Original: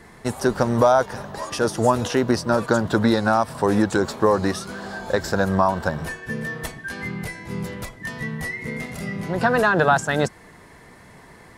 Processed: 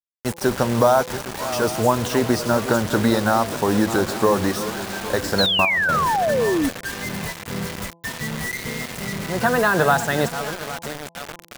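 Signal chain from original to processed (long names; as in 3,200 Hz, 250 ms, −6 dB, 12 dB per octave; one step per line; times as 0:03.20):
feedback delay that plays each chunk backwards 406 ms, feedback 65%, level −12 dB
bit reduction 5 bits
0:05.46–0:05.89: output level in coarse steps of 17 dB
hum removal 168.8 Hz, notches 6
0:05.38–0:06.69: sound drawn into the spectrogram fall 260–4,400 Hz −20 dBFS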